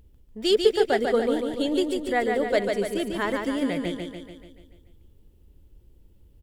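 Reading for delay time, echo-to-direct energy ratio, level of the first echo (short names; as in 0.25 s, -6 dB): 0.145 s, -3.0 dB, -4.5 dB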